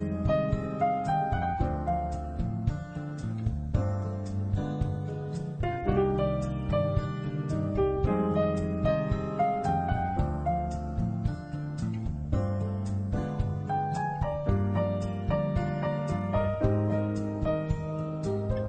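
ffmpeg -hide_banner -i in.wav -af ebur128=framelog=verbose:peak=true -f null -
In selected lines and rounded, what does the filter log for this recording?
Integrated loudness:
  I:         -30.0 LUFS
  Threshold: -40.0 LUFS
Loudness range:
  LRA:         3.5 LU
  Threshold: -50.1 LUFS
  LRA low:   -32.0 LUFS
  LRA high:  -28.5 LUFS
True peak:
  Peak:      -12.0 dBFS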